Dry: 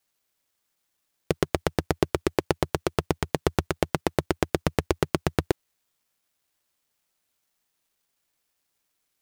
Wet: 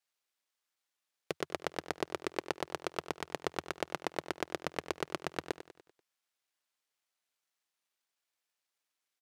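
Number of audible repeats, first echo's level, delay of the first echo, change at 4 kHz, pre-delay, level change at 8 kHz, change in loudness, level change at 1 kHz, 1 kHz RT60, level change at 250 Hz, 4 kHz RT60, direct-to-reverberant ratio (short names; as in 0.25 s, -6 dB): 4, -13.0 dB, 97 ms, -7.5 dB, none, -10.0 dB, -11.5 dB, -8.5 dB, none, -14.5 dB, none, none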